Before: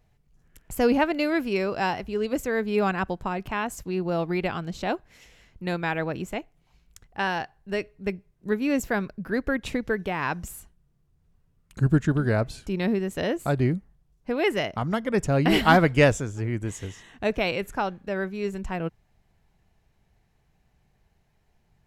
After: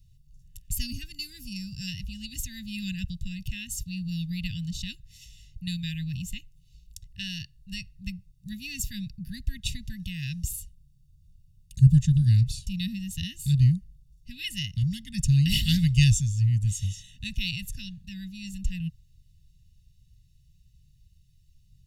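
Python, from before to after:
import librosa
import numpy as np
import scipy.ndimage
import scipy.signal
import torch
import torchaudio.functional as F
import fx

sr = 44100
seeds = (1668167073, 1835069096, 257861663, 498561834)

y = fx.spec_box(x, sr, start_s=0.86, length_s=1.02, low_hz=1600.0, high_hz=4400.0, gain_db=-9)
y = scipy.signal.sosfilt(scipy.signal.cheby2(4, 80, [480.0, 1000.0], 'bandstop', fs=sr, output='sos'), y)
y = y + 0.79 * np.pad(y, (int(1.1 * sr / 1000.0), 0))[:len(y)]
y = F.gain(torch.from_numpy(y), 4.0).numpy()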